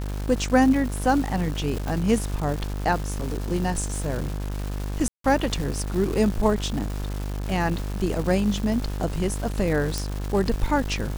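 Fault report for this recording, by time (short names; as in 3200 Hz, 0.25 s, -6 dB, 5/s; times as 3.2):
buzz 50 Hz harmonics 36 -29 dBFS
crackle 560/s -30 dBFS
1.88 pop
5.08–5.24 gap 0.163 s
9.98 pop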